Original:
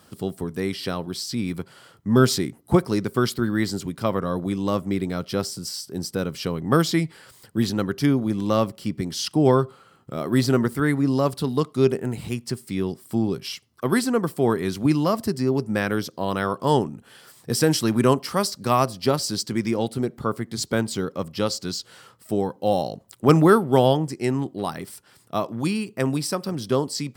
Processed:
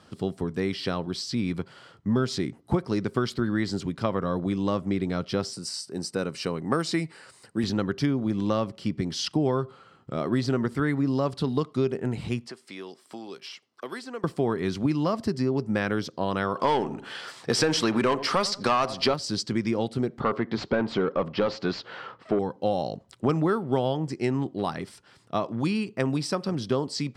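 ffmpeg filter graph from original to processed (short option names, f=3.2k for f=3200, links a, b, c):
-filter_complex "[0:a]asettb=1/sr,asplit=3[a][b][c];[a]atrim=end=5.534[d];[b]atrim=start=5.53:end=7.64,asetpts=PTS-STARTPTS,afade=t=in:d=0.004:c=qsin,afade=t=out:st=2.106:d=0.004:c=qsin,highpass=f=230:p=1,equalizer=f=8.9k:t=o:w=0.39:g=10.5,bandreject=f=3.3k:w=6.6[e];[c]atrim=start=7.636[f];[d][e]acrossfade=d=0.004:c1=hsin:c2=qsin[g];[g][f]acrossfade=d=0.004:c1=qsin:c2=hsin,asettb=1/sr,asplit=3[h][i][j];[h]atrim=end=12.474[k];[i]atrim=start=12.47:end=14.24,asetpts=PTS-STARTPTS,afade=t=in:d=0.004:c=qsin,afade=t=out:st=1.766:d=0.004:c=qsin,acrossover=split=600|2000|4500[l][m][n][o];[l]acompressor=threshold=-36dB:ratio=3[p];[m]acompressor=threshold=-46dB:ratio=3[q];[n]acompressor=threshold=-48dB:ratio=3[r];[o]acompressor=threshold=-45dB:ratio=3[s];[p][q][r][s]amix=inputs=4:normalize=0,highpass=360[t];[j]atrim=start=14.236[u];[k][t]acrossfade=d=0.004:c1=hsin:c2=qsin[v];[v][u]acrossfade=d=0.004:c1=qsin:c2=hsin,asettb=1/sr,asplit=3[w][x][y];[w]atrim=end=16.554[z];[x]atrim=start=16.55:end=19.14,asetpts=PTS-STARTPTS,afade=t=in:d=0.004:c=qsin,afade=t=out:st=2.586:d=0.004:c=qsin,asplit=2[aa][ab];[ab]highpass=f=720:p=1,volume=18dB,asoftclip=type=tanh:threshold=-4.5dB[ac];[aa][ac]amix=inputs=2:normalize=0,lowpass=f=5.9k:p=1,volume=-6dB,asplit=2[ad][ae];[ae]adelay=87,lowpass=f=1k:p=1,volume=-15dB,asplit=2[af][ag];[ag]adelay=87,lowpass=f=1k:p=1,volume=0.31,asplit=2[ah][ai];[ai]adelay=87,lowpass=f=1k:p=1,volume=0.31[aj];[ad][af][ah][aj]amix=inputs=4:normalize=0,atrim=end_sample=114219[ak];[y]atrim=start=19.136[al];[z][ak]acrossfade=d=0.004:c1=hsin:c2=qsin[am];[am][al]acrossfade=d=0.004:c1=qsin:c2=hsin,asettb=1/sr,asplit=3[an][ao][ap];[an]atrim=end=20.204[aq];[ao]atrim=start=20.2:end=22.39,asetpts=PTS-STARTPTS,afade=t=in:d=0.004:c=qsin,afade=t=out:st=2.186:d=0.004:c=qsin,asplit=2[ar][as];[as]highpass=f=720:p=1,volume=21dB,asoftclip=type=tanh:threshold=-9.5dB[at];[ar][at]amix=inputs=2:normalize=0,lowpass=f=1.1k:p=1,volume=-6dB,lowpass=4.2k[au];[ap]atrim=start=22.386[av];[aq][au]acrossfade=d=0.004:c1=hsin:c2=qsin[aw];[aw][av]acrossfade=d=0.004:c1=qsin:c2=hsin,lowpass=5.4k,acompressor=threshold=-21dB:ratio=5"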